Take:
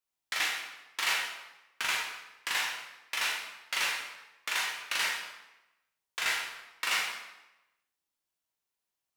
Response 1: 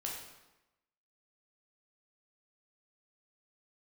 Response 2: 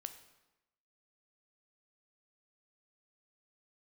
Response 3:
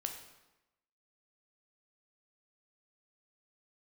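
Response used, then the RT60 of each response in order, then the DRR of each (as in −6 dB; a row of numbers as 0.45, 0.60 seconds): 1; 1.0, 1.0, 1.0 seconds; −2.5, 8.5, 3.5 decibels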